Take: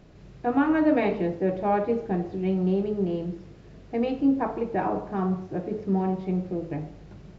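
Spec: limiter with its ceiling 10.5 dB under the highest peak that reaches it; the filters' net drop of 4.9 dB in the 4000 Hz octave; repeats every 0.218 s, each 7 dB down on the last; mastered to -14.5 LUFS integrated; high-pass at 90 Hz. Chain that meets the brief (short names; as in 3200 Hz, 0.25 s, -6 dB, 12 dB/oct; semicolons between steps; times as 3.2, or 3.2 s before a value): HPF 90 Hz; bell 4000 Hz -7.5 dB; limiter -21 dBFS; feedback echo 0.218 s, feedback 45%, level -7 dB; gain +15 dB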